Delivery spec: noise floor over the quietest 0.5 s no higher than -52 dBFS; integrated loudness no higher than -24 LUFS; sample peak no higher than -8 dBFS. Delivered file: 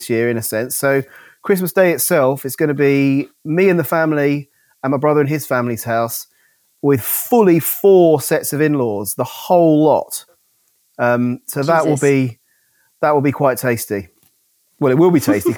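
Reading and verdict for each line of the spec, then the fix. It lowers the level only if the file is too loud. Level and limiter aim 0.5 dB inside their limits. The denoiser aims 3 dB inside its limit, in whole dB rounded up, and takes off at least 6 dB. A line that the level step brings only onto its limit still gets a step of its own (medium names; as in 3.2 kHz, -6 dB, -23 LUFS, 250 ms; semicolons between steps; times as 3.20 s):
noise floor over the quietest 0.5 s -61 dBFS: pass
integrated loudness -15.5 LUFS: fail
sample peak -2.5 dBFS: fail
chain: trim -9 dB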